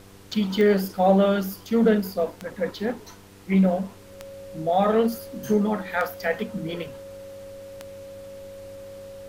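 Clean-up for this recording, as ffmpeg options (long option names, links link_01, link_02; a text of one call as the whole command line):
ffmpeg -i in.wav -af "adeclick=threshold=4,bandreject=frequency=97.9:width_type=h:width=4,bandreject=frequency=195.8:width_type=h:width=4,bandreject=frequency=293.7:width_type=h:width=4,bandreject=frequency=391.6:width_type=h:width=4,bandreject=frequency=489.5:width_type=h:width=4,bandreject=frequency=550:width=30,agate=range=-21dB:threshold=-37dB" out.wav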